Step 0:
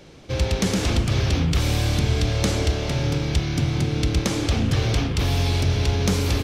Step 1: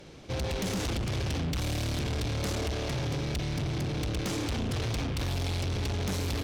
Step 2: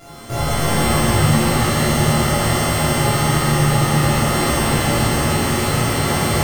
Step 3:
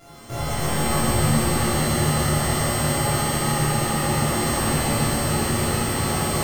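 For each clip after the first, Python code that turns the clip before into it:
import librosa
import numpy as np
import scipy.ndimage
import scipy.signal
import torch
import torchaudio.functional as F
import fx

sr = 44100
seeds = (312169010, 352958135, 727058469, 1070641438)

y1 = fx.tube_stage(x, sr, drive_db=27.0, bias=0.35)
y1 = F.gain(torch.from_numpy(y1), -1.5).numpy()
y2 = np.r_[np.sort(y1[:len(y1) // 64 * 64].reshape(-1, 64), axis=1).ravel(), y1[len(y1) // 64 * 64:]]
y2 = fx.echo_split(y2, sr, split_hz=580.0, low_ms=468, high_ms=287, feedback_pct=52, wet_db=-8)
y2 = fx.rev_shimmer(y2, sr, seeds[0], rt60_s=1.1, semitones=7, shimmer_db=-2, drr_db=-7.0)
y2 = F.gain(torch.from_numpy(y2), 4.5).numpy()
y3 = fx.echo_split(y2, sr, split_hz=740.0, low_ms=282, high_ms=145, feedback_pct=52, wet_db=-5)
y3 = F.gain(torch.from_numpy(y3), -6.5).numpy()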